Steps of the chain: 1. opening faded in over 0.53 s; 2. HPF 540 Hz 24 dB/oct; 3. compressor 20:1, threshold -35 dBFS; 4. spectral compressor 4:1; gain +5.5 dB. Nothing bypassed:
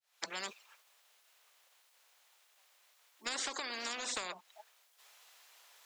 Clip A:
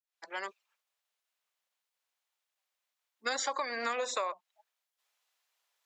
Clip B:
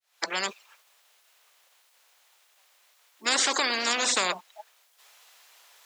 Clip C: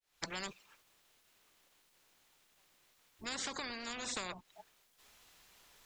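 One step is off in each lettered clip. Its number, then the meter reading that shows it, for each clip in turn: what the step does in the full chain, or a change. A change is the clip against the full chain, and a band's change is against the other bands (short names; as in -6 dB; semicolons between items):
4, 500 Hz band +8.0 dB; 3, mean gain reduction 6.5 dB; 2, 250 Hz band +6.5 dB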